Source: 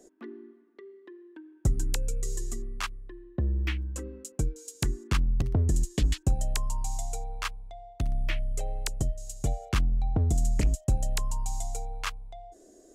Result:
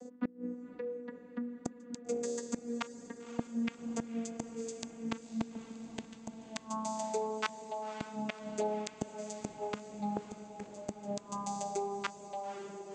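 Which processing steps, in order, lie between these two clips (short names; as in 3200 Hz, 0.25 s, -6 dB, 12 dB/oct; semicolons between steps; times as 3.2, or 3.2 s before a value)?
vocoder on a gliding note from B3, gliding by -4 st; flipped gate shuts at -31 dBFS, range -26 dB; diffused feedback echo 0.532 s, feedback 66%, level -12 dB; gain +8.5 dB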